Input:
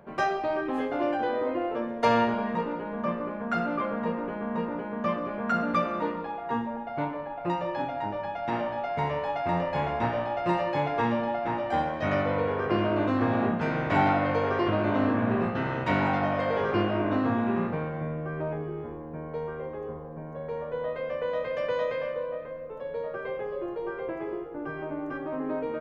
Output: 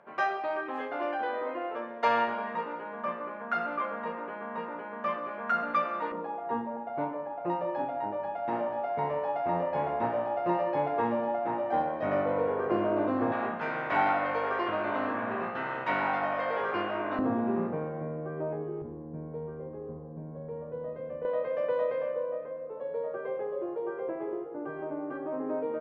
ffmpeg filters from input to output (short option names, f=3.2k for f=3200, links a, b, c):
-af "asetnsamples=n=441:p=0,asendcmd='6.12 bandpass f 560;13.32 bandpass f 1300;17.19 bandpass f 430;18.82 bandpass f 190;21.25 bandpass f 530',bandpass=f=1.4k:t=q:w=0.69:csg=0"